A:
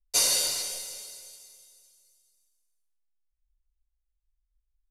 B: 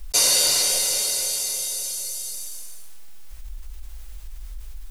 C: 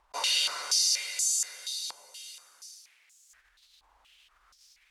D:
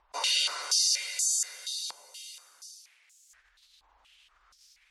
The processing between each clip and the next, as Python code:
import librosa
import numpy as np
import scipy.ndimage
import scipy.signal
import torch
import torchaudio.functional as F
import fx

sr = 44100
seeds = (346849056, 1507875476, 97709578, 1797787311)

y1 = fx.env_flatten(x, sr, amount_pct=70)
y1 = y1 * librosa.db_to_amplitude(4.0)
y2 = fx.filter_held_bandpass(y1, sr, hz=4.2, low_hz=940.0, high_hz=7000.0)
y2 = y2 * librosa.db_to_amplitude(4.5)
y3 = fx.spec_gate(y2, sr, threshold_db=-30, keep='strong')